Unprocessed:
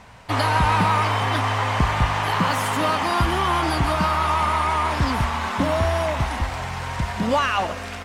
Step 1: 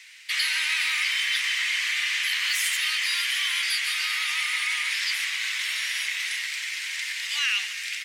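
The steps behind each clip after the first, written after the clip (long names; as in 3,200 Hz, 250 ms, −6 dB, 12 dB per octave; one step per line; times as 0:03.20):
Chebyshev high-pass filter 2,000 Hz, order 4
in parallel at −2 dB: brickwall limiter −24 dBFS, peak gain reduction 7.5 dB
on the sum: level +2 dB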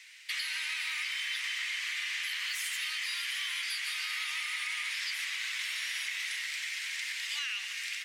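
downward compressor 6 to 1, threshold −27 dBFS, peak gain reduction 7 dB
on a send at −10 dB: convolution reverb RT60 5.7 s, pre-delay 45 ms
on the sum: level −5 dB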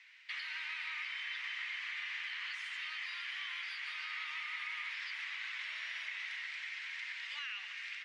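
head-to-tape spacing loss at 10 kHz 34 dB
level +2 dB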